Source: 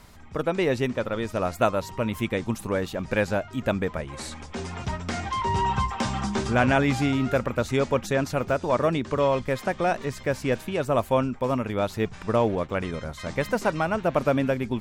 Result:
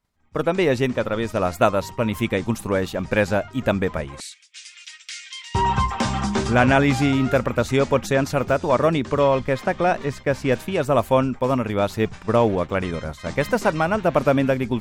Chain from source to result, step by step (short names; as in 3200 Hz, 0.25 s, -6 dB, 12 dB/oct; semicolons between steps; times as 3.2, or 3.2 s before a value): expander -32 dBFS; 4.2–5.55 inverse Chebyshev high-pass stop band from 680 Hz, stop band 60 dB; 9.23–10.49 high shelf 7500 Hz -9.5 dB; gain +4.5 dB